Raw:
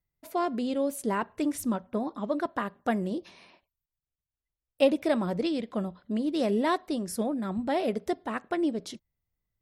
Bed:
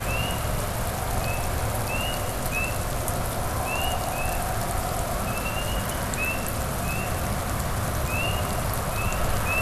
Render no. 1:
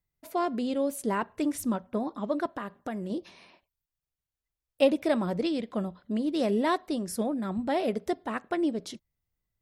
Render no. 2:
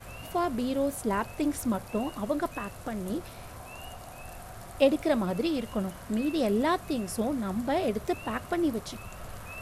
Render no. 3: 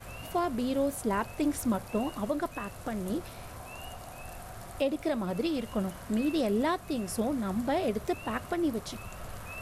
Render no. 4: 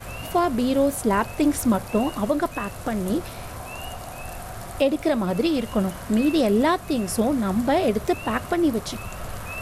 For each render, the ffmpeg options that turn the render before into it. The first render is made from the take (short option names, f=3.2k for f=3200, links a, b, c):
-filter_complex "[0:a]asettb=1/sr,asplit=3[a][b][c];[a]atrim=end=2.514[d];[b]atrim=start=2.51:end=3.1,asetpts=PTS-STARTPTS,afade=t=in:d=0.004:c=qsin,afade=t=out:st=0.586:d=0.004:c=qsin,acompressor=threshold=-31dB:ratio=4:attack=3.2:release=140:knee=1:detection=peak[e];[c]atrim=start=3.096[f];[d][e]acrossfade=d=0.004:c1=hsin:c2=qsin[g];[g][f]acrossfade=d=0.004:c1=qsin:c2=hsin"
-filter_complex "[1:a]volume=-17dB[a];[0:a][a]amix=inputs=2:normalize=0"
-af "alimiter=limit=-19dB:level=0:latency=1:release=403"
-af "volume=8.5dB"